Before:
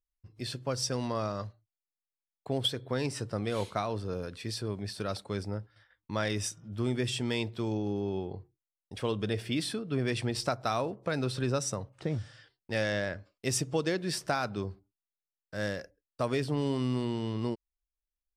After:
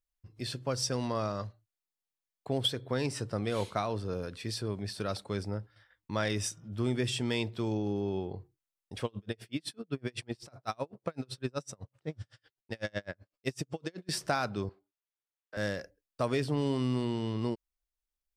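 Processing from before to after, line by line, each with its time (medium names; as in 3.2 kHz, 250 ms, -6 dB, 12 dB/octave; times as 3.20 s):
9.05–14.09 s: logarithmic tremolo 7.9 Hz, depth 38 dB
14.69–15.57 s: three-band isolator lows -23 dB, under 310 Hz, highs -12 dB, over 3.8 kHz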